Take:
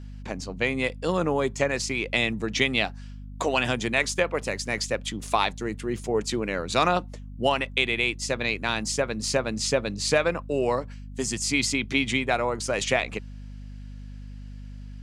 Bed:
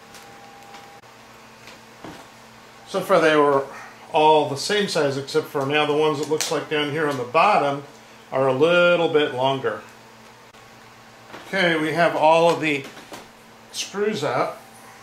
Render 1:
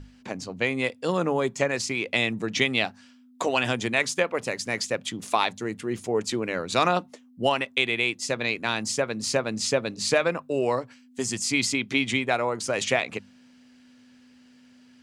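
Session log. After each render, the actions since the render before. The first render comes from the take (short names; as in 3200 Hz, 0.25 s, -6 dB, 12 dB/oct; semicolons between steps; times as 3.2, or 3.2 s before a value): notches 50/100/150/200 Hz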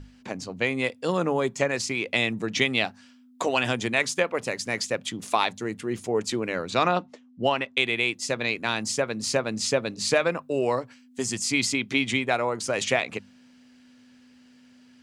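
6.7–7.77 air absorption 91 m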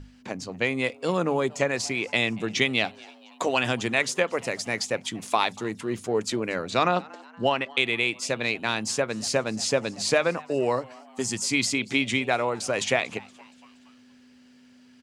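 frequency-shifting echo 0.235 s, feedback 54%, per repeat +150 Hz, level -23.5 dB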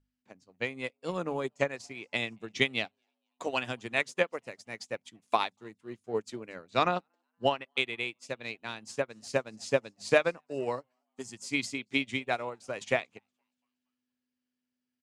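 upward expander 2.5:1, over -40 dBFS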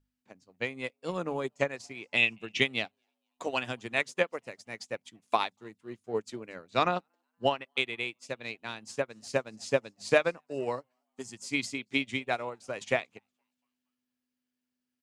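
2.17–2.61 bell 2700 Hz +15 dB 0.51 oct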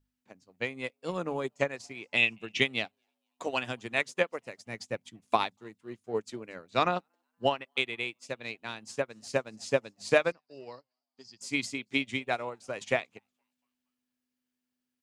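4.66–5.57 low shelf 240 Hz +9.5 dB; 10.32–11.41 ladder low-pass 5000 Hz, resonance 85%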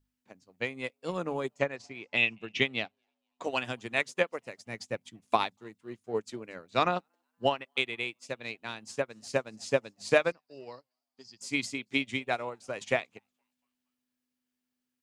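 1.59–3.44 air absorption 81 m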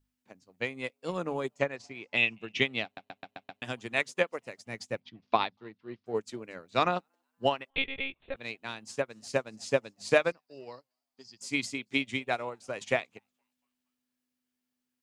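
2.84 stutter in place 0.13 s, 6 plays; 5–6.06 steep low-pass 5100 Hz 48 dB/oct; 7.7–8.36 monotone LPC vocoder at 8 kHz 270 Hz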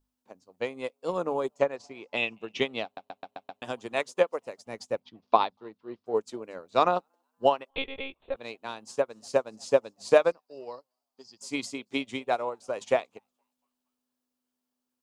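ten-band EQ 125 Hz -6 dB, 500 Hz +5 dB, 1000 Hz +6 dB, 2000 Hz -7 dB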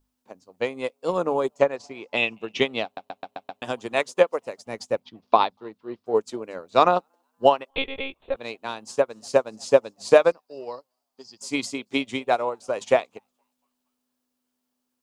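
gain +5.5 dB; limiter -2 dBFS, peak gain reduction 3 dB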